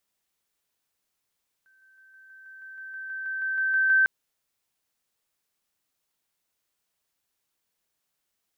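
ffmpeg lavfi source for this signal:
-f lavfi -i "aevalsrc='pow(10,(-58.5+3*floor(t/0.16))/20)*sin(2*PI*1550*t)':d=2.4:s=44100"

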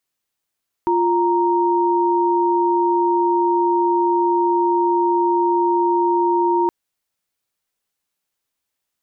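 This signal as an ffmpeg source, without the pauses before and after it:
-f lavfi -i "aevalsrc='0.141*(sin(2*PI*349.23*t)+sin(2*PI*932.33*t))':d=5.82:s=44100"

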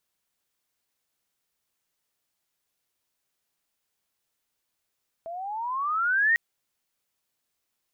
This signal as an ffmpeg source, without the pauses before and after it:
-f lavfi -i "aevalsrc='pow(10,(-17.5+16*(t/1.1-1))/20)*sin(2*PI*653*1.1/(18.5*log(2)/12)*(exp(18.5*log(2)/12*t/1.1)-1))':d=1.1:s=44100"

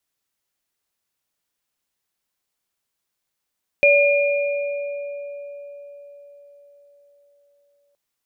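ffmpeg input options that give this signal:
-f lavfi -i "aevalsrc='0.237*pow(10,-3*t/4.93)*sin(2*PI*572*t)+0.237*pow(10,-3*t/2.39)*sin(2*PI*2420*t)':d=4.12:s=44100"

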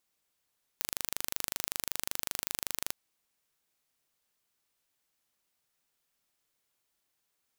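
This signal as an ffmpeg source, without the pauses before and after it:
-f lavfi -i "aevalsrc='0.562*eq(mod(n,1743),0)':d=2.12:s=44100"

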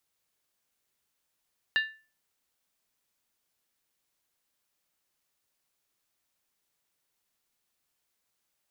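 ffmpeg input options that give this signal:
-f lavfi -i "aevalsrc='0.1*pow(10,-3*t/0.35)*sin(2*PI*1760*t)+0.0473*pow(10,-3*t/0.277)*sin(2*PI*2805.4*t)+0.0224*pow(10,-3*t/0.239)*sin(2*PI*3759.4*t)+0.0106*pow(10,-3*t/0.231)*sin(2*PI*4041*t)+0.00501*pow(10,-3*t/0.215)*sin(2*PI*4669.3*t)':d=0.63:s=44100"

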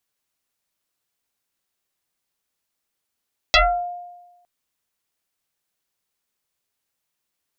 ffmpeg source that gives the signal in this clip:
-f lavfi -i "aevalsrc='0.355*pow(10,-3*t/1.14)*sin(2*PI*707*t+7.5*pow(10,-3*t/0.36)*sin(2*PI*0.94*707*t))':d=0.91:s=44100"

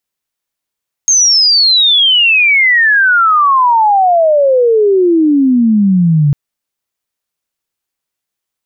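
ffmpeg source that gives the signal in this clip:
-f lavfi -i "aevalsrc='pow(10,(-5.5-0.5*t/5.25)/20)*sin(2*PI*6500*5.25/log(140/6500)*(exp(log(140/6500)*t/5.25)-1))':d=5.25:s=44100"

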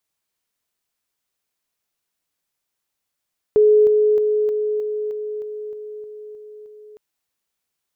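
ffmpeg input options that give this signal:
-f lavfi -i "aevalsrc='pow(10,(-9.5-3*floor(t/0.31))/20)*sin(2*PI*424*t)':d=3.41:s=44100"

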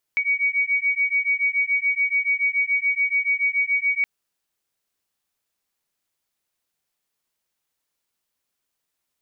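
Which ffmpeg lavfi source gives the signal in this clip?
-f lavfi -i "aevalsrc='0.0794*(sin(2*PI*2250*t)+sin(2*PI*2257*t))':d=3.87:s=44100"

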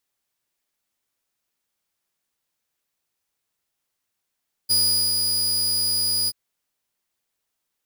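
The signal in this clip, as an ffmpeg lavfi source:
-f lavfi -i "aevalsrc='0.211*(2*mod(4910*t,1)-1)':d=1.631:s=44100,afade=t=in:d=0.021,afade=t=out:st=0.021:d=0.405:silence=0.631,afade=t=out:st=1.59:d=0.041"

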